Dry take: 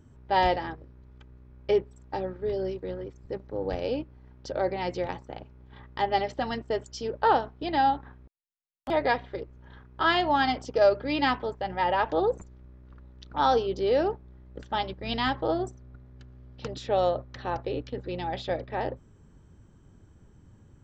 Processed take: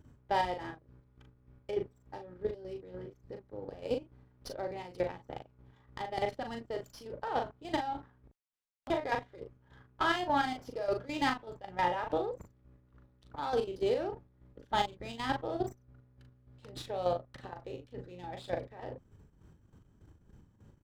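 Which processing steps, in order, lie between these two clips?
output level in coarse steps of 14 dB
square-wave tremolo 3.4 Hz, depth 60%, duty 40%
double-tracking delay 39 ms −5.5 dB
windowed peak hold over 3 samples

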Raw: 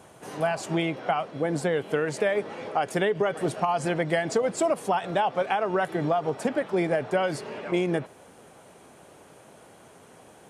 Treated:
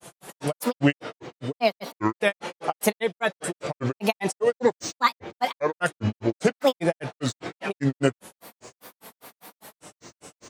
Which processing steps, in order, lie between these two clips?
high-shelf EQ 2,900 Hz +11.5 dB
comb filter 5.9 ms, depth 37%
granular cloud 131 ms, grains 5 per second, pitch spread up and down by 7 semitones
level +5.5 dB

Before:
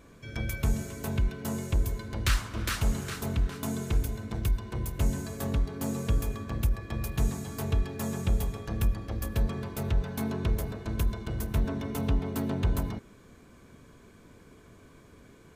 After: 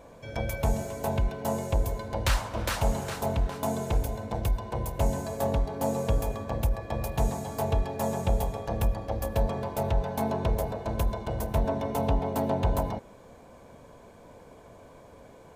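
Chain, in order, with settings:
flat-topped bell 690 Hz +12.5 dB 1.2 octaves

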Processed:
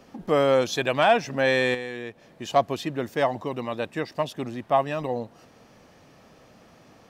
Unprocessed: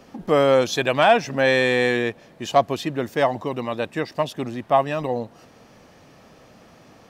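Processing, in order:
0:01.74–0:02.50: downward compressor 6 to 1, threshold −27 dBFS, peak gain reduction 11 dB
level −3.5 dB

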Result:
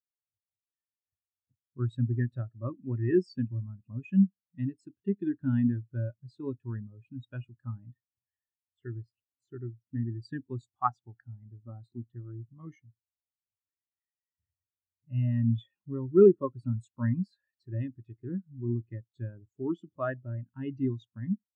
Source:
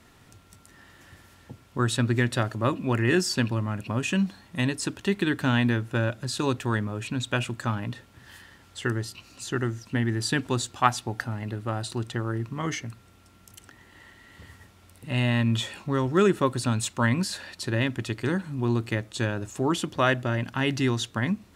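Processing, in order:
0:11.60–0:12.15: parametric band 240 Hz +5.5 dB 0.26 octaves
every bin expanded away from the loudest bin 2.5 to 1
level −5 dB

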